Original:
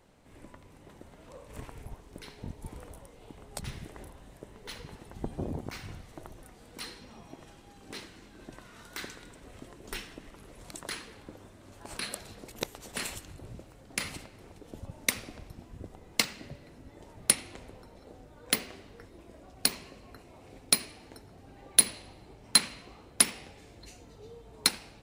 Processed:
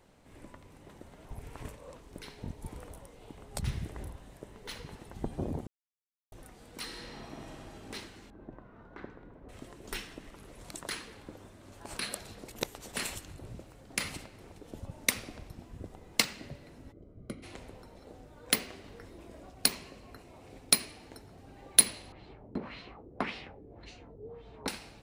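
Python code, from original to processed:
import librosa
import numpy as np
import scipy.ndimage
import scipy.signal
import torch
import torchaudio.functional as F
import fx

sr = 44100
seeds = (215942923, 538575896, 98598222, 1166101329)

y = fx.peak_eq(x, sr, hz=72.0, db=9.0, octaves=2.5, at=(3.54, 4.16))
y = fx.reverb_throw(y, sr, start_s=6.84, length_s=0.89, rt60_s=2.3, drr_db=-2.5)
y = fx.lowpass(y, sr, hz=1000.0, slope=12, at=(8.3, 9.49))
y = fx.moving_average(y, sr, points=50, at=(16.91, 17.42), fade=0.02)
y = fx.env_flatten(y, sr, amount_pct=50, at=(18.84, 19.5))
y = fx.filter_lfo_lowpass(y, sr, shape='sine', hz=1.8, low_hz=370.0, high_hz=4100.0, q=1.7, at=(22.12, 24.68))
y = fx.edit(y, sr, fx.reverse_span(start_s=1.25, length_s=0.75),
    fx.silence(start_s=5.67, length_s=0.65), tone=tone)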